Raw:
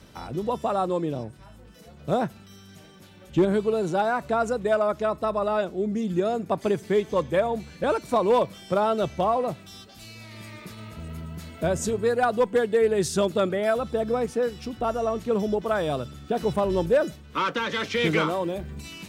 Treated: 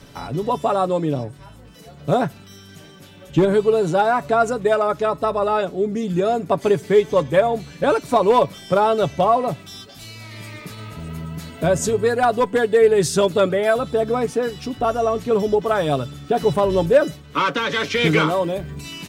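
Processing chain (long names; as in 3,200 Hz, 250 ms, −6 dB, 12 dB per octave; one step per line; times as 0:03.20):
comb filter 7.1 ms, depth 45%
level +5.5 dB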